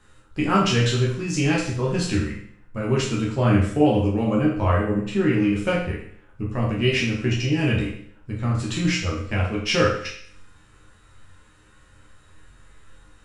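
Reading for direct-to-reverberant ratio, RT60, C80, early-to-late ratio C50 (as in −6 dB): −5.0 dB, 0.60 s, 7.5 dB, 4.0 dB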